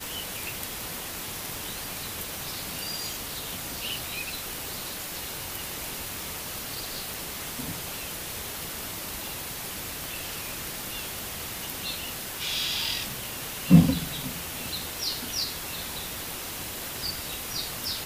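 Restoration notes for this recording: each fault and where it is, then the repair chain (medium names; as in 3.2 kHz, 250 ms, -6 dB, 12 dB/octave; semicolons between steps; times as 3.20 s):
tick 78 rpm
7.14 s: pop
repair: de-click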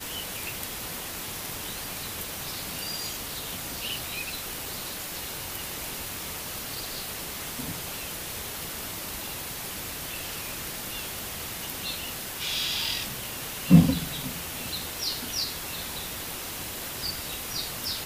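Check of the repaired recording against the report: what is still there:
nothing left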